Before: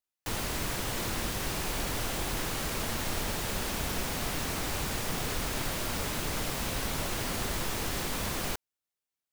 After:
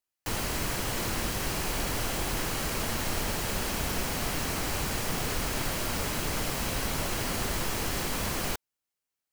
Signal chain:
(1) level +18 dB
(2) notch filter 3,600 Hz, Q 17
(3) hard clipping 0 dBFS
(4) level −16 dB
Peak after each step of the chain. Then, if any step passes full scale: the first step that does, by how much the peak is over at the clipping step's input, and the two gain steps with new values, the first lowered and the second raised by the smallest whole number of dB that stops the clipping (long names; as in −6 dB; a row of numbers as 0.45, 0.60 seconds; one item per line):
−1.5, −1.5, −1.5, −17.5 dBFS
no step passes full scale